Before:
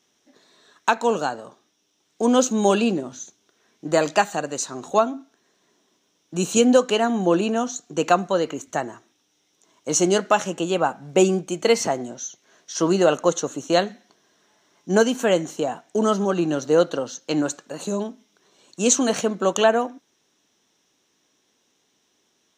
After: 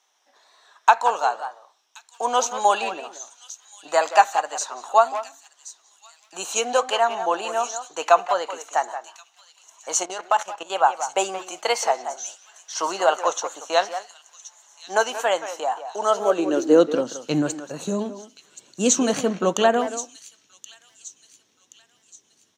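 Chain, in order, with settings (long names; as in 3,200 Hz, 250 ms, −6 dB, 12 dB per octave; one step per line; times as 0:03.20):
far-end echo of a speakerphone 180 ms, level −10 dB
tape wow and flutter 47 cents
on a send: delay with a high-pass on its return 1,076 ms, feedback 39%, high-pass 4,200 Hz, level −10.5 dB
on the sum: high-pass filter sweep 830 Hz → 98 Hz, 0:16.01–0:17.48
0:10.03–0:10.70: output level in coarse steps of 15 dB
level −1 dB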